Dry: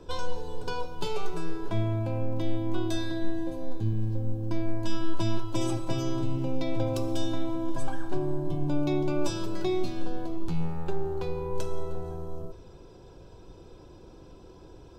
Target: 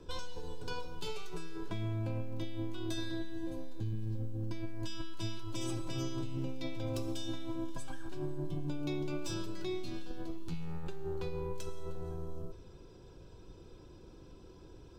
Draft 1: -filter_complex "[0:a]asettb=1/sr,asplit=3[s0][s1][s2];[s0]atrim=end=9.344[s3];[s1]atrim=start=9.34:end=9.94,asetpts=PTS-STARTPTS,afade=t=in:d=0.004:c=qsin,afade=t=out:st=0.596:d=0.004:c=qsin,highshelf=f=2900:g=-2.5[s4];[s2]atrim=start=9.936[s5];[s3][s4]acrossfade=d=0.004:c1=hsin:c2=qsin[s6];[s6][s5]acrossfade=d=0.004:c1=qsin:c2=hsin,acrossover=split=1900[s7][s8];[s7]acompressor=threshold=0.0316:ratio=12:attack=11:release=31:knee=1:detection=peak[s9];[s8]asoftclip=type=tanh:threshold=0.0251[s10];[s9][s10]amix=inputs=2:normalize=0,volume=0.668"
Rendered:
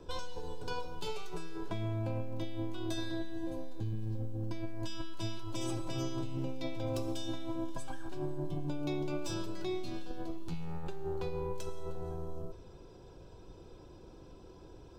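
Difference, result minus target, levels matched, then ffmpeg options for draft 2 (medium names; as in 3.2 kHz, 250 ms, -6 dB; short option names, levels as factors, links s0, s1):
1 kHz band +3.0 dB
-filter_complex "[0:a]asettb=1/sr,asplit=3[s0][s1][s2];[s0]atrim=end=9.344[s3];[s1]atrim=start=9.34:end=9.94,asetpts=PTS-STARTPTS,afade=t=in:d=0.004:c=qsin,afade=t=out:st=0.596:d=0.004:c=qsin,highshelf=f=2900:g=-2.5[s4];[s2]atrim=start=9.936[s5];[s3][s4]acrossfade=d=0.004:c1=hsin:c2=qsin[s6];[s6][s5]acrossfade=d=0.004:c1=qsin:c2=hsin,acrossover=split=1900[s7][s8];[s7]acompressor=threshold=0.0316:ratio=12:attack=11:release=31:knee=1:detection=peak,equalizer=f=730:w=1.3:g=-6[s9];[s8]asoftclip=type=tanh:threshold=0.0251[s10];[s9][s10]amix=inputs=2:normalize=0,volume=0.668"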